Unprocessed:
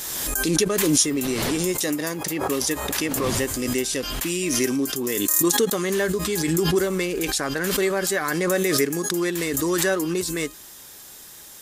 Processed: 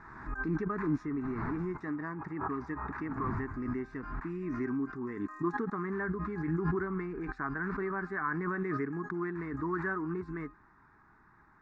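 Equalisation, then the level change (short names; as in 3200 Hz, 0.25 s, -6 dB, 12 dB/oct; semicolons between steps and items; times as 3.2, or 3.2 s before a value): ladder low-pass 1800 Hz, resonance 25%; notch 740 Hz, Q 12; fixed phaser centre 1300 Hz, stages 4; 0.0 dB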